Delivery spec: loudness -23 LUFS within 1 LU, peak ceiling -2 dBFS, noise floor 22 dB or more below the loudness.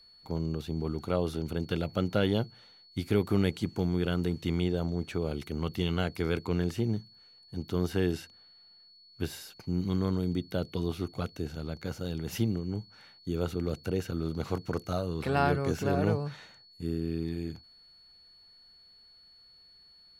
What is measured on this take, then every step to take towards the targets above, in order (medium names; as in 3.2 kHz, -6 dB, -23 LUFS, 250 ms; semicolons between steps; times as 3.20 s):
steady tone 4.4 kHz; tone level -55 dBFS; loudness -32.0 LUFS; peak level -12.0 dBFS; loudness target -23.0 LUFS
-> band-stop 4.4 kHz, Q 30; trim +9 dB